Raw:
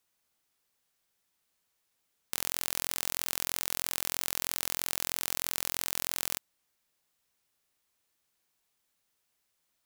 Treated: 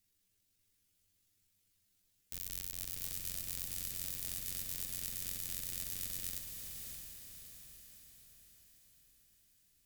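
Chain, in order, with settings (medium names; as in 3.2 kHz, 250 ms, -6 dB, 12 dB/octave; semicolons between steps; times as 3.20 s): rotating-head pitch shifter +11.5 st; sine folder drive 11 dB, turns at -4 dBFS; amplifier tone stack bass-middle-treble 10-0-1; echo that smears into a reverb 643 ms, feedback 50%, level -4.5 dB; trim +8 dB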